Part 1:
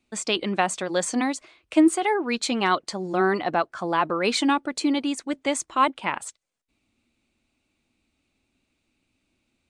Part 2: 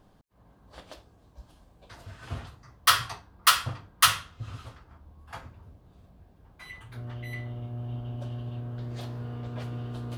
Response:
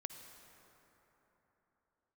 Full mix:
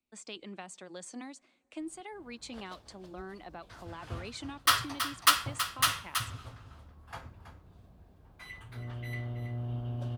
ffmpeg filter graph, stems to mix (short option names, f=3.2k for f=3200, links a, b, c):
-filter_complex "[0:a]acrossover=split=230|3000[a][b][c];[b]acompressor=threshold=-27dB:ratio=3[d];[a][d][c]amix=inputs=3:normalize=0,volume=-18dB,asplit=3[e][f][g];[f]volume=-19.5dB[h];[1:a]adelay=1800,volume=-2.5dB,asplit=3[i][j][k];[j]volume=-23dB[l];[k]volume=-10.5dB[m];[g]apad=whole_len=528127[n];[i][n]sidechaincompress=threshold=-41dB:ratio=8:attack=6.6:release=605[o];[2:a]atrim=start_sample=2205[p];[h][l]amix=inputs=2:normalize=0[q];[q][p]afir=irnorm=-1:irlink=0[r];[m]aecho=0:1:325:1[s];[e][o][r][s]amix=inputs=4:normalize=0"